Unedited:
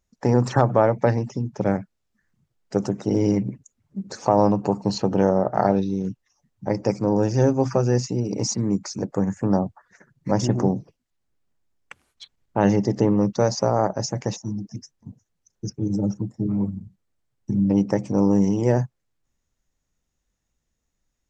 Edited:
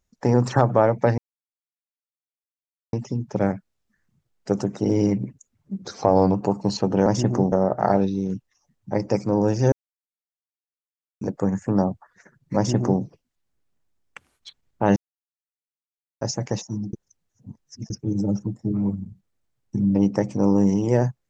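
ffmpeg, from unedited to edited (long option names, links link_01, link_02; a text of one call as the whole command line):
ffmpeg -i in.wav -filter_complex "[0:a]asplit=12[link_01][link_02][link_03][link_04][link_05][link_06][link_07][link_08][link_09][link_10][link_11][link_12];[link_01]atrim=end=1.18,asetpts=PTS-STARTPTS,afade=type=out:start_time=1.176:duration=0.004:curve=hsin,apad=pad_dur=1.75[link_13];[link_02]atrim=start=1.18:end=4.074,asetpts=PTS-STARTPTS,afade=type=in:duration=0.004:curve=hsin[link_14];[link_03]atrim=start=4.07:end=4.55,asetpts=PTS-STARTPTS,asetrate=40572,aresample=44100[link_15];[link_04]atrim=start=4.546:end=5.272[link_16];[link_05]atrim=start=10.308:end=10.772[link_17];[link_06]atrim=start=5.268:end=7.47,asetpts=PTS-STARTPTS,afade=type=out:start_time=2.198:duration=0.004:curve=hsin[link_18];[link_07]atrim=start=7.47:end=8.96,asetpts=PTS-STARTPTS,volume=0[link_19];[link_08]atrim=start=8.96:end=12.71,asetpts=PTS-STARTPTS,afade=type=in:duration=0.004:curve=hsin,afade=type=out:start_time=3.746:duration=0.004:curve=hsin[link_20];[link_09]atrim=start=12.71:end=13.96,asetpts=PTS-STARTPTS,volume=0[link_21];[link_10]atrim=start=13.96:end=14.682,asetpts=PTS-STARTPTS,afade=type=in:duration=0.004:curve=hsin[link_22];[link_11]atrim=start=14.678:end=15.652,asetpts=PTS-STARTPTS,areverse[link_23];[link_12]atrim=start=15.648[link_24];[link_13][link_14]concat=n=2:v=0:a=1[link_25];[link_25][link_15]acrossfade=duration=0.004:curve1=hsin:curve2=hsin[link_26];[link_26][link_16]acrossfade=duration=0.004:curve1=hsin:curve2=hsin[link_27];[link_27][link_17]acrossfade=duration=0.004:curve1=hsin:curve2=hsin[link_28];[link_18][link_19][link_20][link_21][link_22]concat=n=5:v=0:a=1[link_29];[link_28][link_29]acrossfade=duration=0.004:curve1=hsin:curve2=hsin[link_30];[link_30][link_23]acrossfade=duration=0.004:curve1=hsin:curve2=hsin[link_31];[link_31][link_24]acrossfade=duration=0.004:curve1=hsin:curve2=hsin" out.wav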